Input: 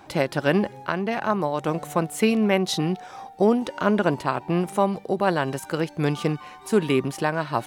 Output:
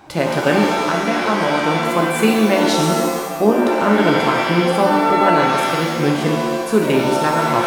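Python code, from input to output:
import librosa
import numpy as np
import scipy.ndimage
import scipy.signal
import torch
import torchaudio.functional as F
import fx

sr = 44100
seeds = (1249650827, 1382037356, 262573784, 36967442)

y = fx.rev_shimmer(x, sr, seeds[0], rt60_s=1.3, semitones=7, shimmer_db=-2, drr_db=0.5)
y = y * librosa.db_to_amplitude(2.5)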